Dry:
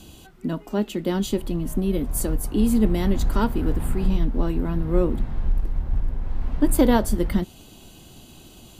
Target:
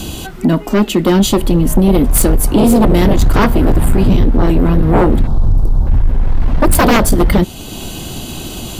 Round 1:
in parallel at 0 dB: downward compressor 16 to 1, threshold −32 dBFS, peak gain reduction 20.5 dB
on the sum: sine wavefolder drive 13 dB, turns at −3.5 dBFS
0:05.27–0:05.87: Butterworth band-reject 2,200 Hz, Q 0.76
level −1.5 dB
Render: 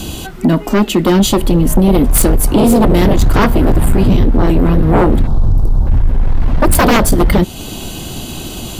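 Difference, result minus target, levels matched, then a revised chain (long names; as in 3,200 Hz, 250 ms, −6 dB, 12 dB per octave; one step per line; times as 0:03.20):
downward compressor: peak gain reduction −8 dB
in parallel at 0 dB: downward compressor 16 to 1, threshold −40.5 dBFS, peak gain reduction 28.5 dB
on the sum: sine wavefolder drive 13 dB, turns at −3.5 dBFS
0:05.27–0:05.87: Butterworth band-reject 2,200 Hz, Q 0.76
level −1.5 dB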